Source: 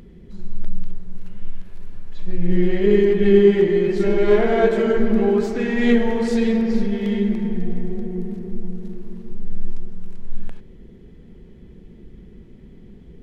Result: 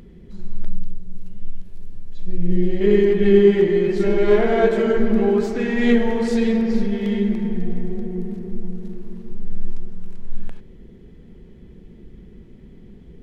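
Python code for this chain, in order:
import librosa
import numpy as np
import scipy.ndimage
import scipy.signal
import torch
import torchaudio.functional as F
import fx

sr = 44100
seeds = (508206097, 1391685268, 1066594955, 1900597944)

y = fx.peak_eq(x, sr, hz=1400.0, db=-11.5, octaves=2.3, at=(0.75, 2.81))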